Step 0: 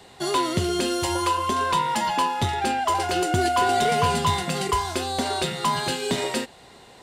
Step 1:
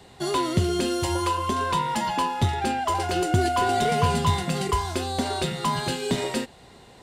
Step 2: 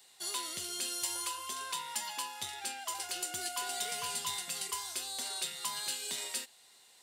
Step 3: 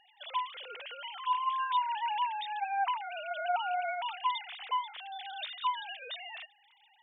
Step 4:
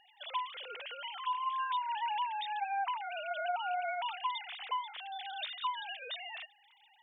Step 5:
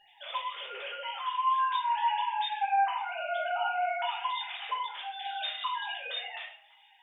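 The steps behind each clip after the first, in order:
low-shelf EQ 260 Hz +8 dB; level −3 dB
first difference
three sine waves on the formant tracks; level +4 dB
downward compressor, threshold −31 dBFS, peak gain reduction 6.5 dB
convolution reverb RT60 0.60 s, pre-delay 5 ms, DRR −5 dB; level −1 dB

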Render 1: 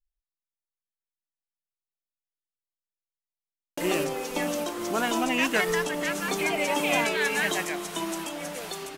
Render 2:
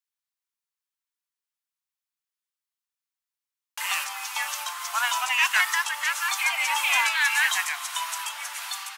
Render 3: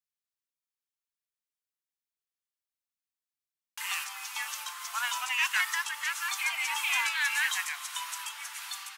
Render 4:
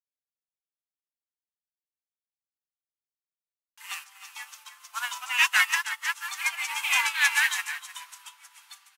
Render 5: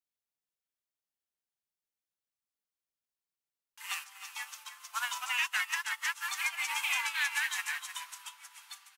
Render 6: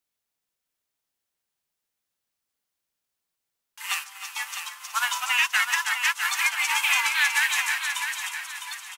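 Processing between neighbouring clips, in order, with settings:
Butterworth high-pass 880 Hz 48 dB per octave; level +5 dB
parametric band 590 Hz −9.5 dB 0.98 octaves; level −5.5 dB
single-tap delay 312 ms −6.5 dB; expander for the loud parts 2.5 to 1, over −42 dBFS; level +7.5 dB
downward compressor 4 to 1, threshold −30 dBFS, peak gain reduction 12 dB
repeating echo 655 ms, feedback 33%, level −7.5 dB; level +9 dB

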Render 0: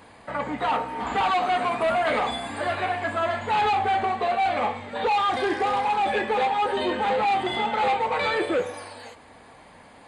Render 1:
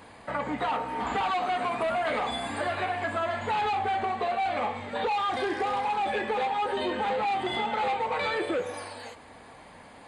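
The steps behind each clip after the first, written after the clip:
downward compressor, threshold −26 dBFS, peak gain reduction 6 dB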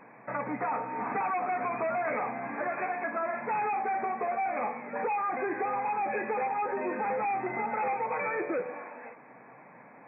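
brick-wall band-pass 110–2,600 Hz
level −2.5 dB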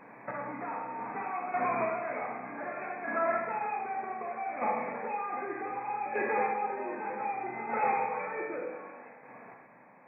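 square-wave tremolo 0.65 Hz, depth 60%, duty 20%
four-comb reverb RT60 1.1 s, combs from 28 ms, DRR 0.5 dB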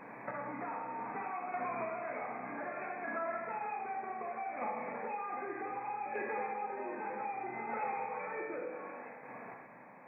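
downward compressor 2.5 to 1, threshold −42 dBFS, peak gain reduction 11.5 dB
level +2 dB

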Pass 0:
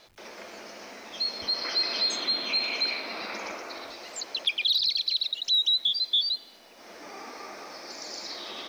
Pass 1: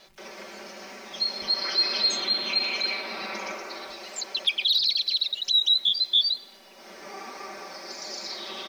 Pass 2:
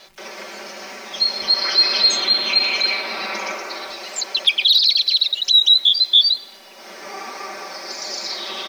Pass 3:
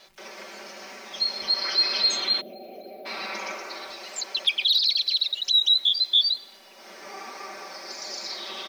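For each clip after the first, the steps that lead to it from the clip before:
comb filter 5.2 ms, depth 76%
low-shelf EQ 330 Hz −7 dB; level +8.5 dB
gain on a spectral selection 0:02.41–0:03.06, 780–11,000 Hz −30 dB; level −7 dB

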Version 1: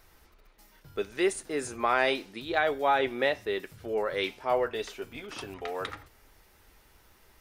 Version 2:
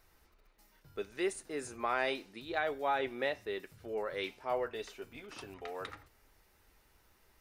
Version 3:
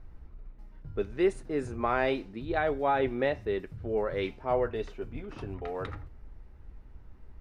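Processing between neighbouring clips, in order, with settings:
notch filter 3,300 Hz, Q 21; level −7.5 dB
RIAA equalisation playback; mains hum 60 Hz, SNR 30 dB; one half of a high-frequency compander decoder only; level +4.5 dB

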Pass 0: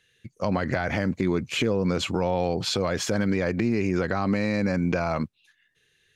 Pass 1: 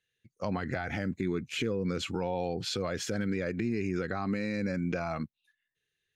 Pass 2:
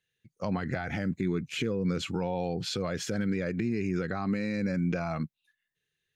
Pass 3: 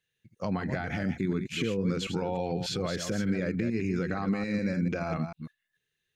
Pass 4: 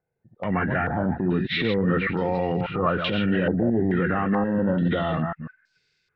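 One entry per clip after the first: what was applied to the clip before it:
noise reduction from a noise print of the clip's start 10 dB; level −7 dB
parametric band 160 Hz +5.5 dB 0.63 octaves
delay that plays each chunk backwards 148 ms, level −7.5 dB
hearing-aid frequency compression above 1,200 Hz 1.5 to 1; transient designer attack −8 dB, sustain +3 dB; low-pass on a step sequencer 2.3 Hz 740–4,700 Hz; level +7 dB

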